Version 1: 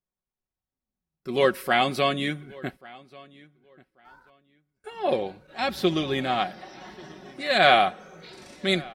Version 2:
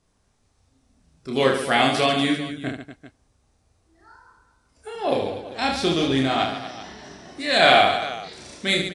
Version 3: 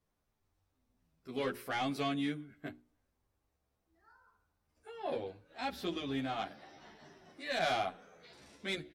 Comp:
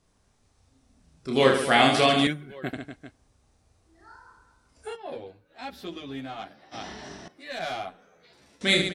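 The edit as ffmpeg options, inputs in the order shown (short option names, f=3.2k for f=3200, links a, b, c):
-filter_complex "[2:a]asplit=2[a][b];[1:a]asplit=4[c][d][e][f];[c]atrim=end=2.272[g];[0:a]atrim=start=2.268:end=2.732[h];[d]atrim=start=2.728:end=4.97[i];[a]atrim=start=4.93:end=6.75[j];[e]atrim=start=6.71:end=7.282[k];[b]atrim=start=7.278:end=8.612[l];[f]atrim=start=8.608[m];[g][h]acrossfade=d=0.004:c1=hsin:c2=hsin[n];[n][i]acrossfade=d=0.004:c1=hsin:c2=hsin[o];[o][j]acrossfade=d=0.04:c1=tri:c2=tri[p];[p][k]acrossfade=d=0.04:c1=tri:c2=tri[q];[q][l]acrossfade=d=0.004:c1=hsin:c2=hsin[r];[r][m]acrossfade=d=0.004:c1=hsin:c2=hsin"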